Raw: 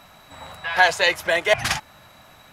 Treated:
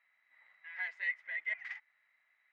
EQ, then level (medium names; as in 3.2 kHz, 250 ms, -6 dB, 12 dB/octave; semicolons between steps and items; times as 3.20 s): band-pass filter 2 kHz, Q 17; distance through air 57 m; -7.0 dB